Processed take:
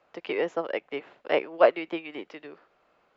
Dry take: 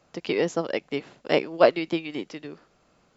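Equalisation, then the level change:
three-way crossover with the lows and the highs turned down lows −13 dB, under 350 Hz, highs −20 dB, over 3,400 Hz
dynamic equaliser 4,500 Hz, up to −6 dB, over −53 dBFS, Q 1.9
parametric band 150 Hz −2.5 dB 2.4 octaves
0.0 dB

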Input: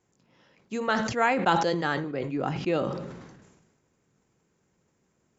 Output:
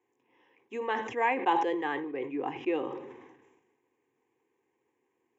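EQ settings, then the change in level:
band-pass filter 240–6,200 Hz
high-shelf EQ 4,500 Hz −9.5 dB
phaser with its sweep stopped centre 920 Hz, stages 8
0.0 dB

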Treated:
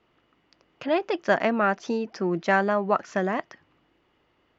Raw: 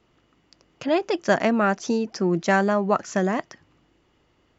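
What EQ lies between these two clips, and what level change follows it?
low-pass filter 3,500 Hz 12 dB per octave
low-shelf EQ 150 Hz −4 dB
low-shelf EQ 370 Hz −5 dB
0.0 dB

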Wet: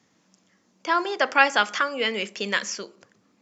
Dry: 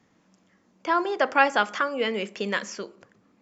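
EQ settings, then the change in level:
high-pass filter 85 Hz
parametric band 5,800 Hz +9 dB 1.8 octaves
dynamic equaliser 2,100 Hz, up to +4 dB, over −34 dBFS, Q 0.7
−2.0 dB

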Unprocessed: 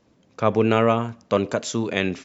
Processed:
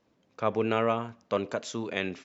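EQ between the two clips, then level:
high-frequency loss of the air 59 metres
low-shelf EQ 260 Hz −7 dB
−6.0 dB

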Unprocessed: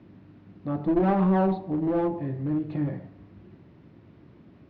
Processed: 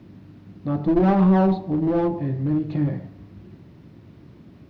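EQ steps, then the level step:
bass and treble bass +4 dB, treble +11 dB
+3.0 dB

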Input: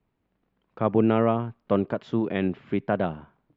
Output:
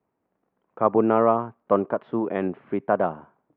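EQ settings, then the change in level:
dynamic equaliser 1,100 Hz, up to +6 dB, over −40 dBFS, Q 2.1
resonant band-pass 730 Hz, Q 0.68
high-frequency loss of the air 310 metres
+5.0 dB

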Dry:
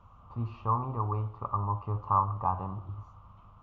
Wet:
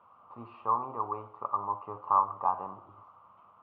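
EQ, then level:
band-pass filter 400–2,500 Hz
high-frequency loss of the air 80 metres
+2.0 dB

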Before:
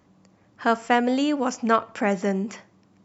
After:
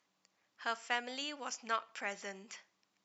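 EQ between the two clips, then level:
resonant band-pass 4,300 Hz, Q 0.71
−5.5 dB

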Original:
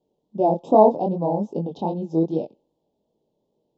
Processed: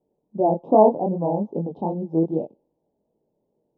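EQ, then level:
low-pass filter 1,100 Hz 12 dB per octave
0.0 dB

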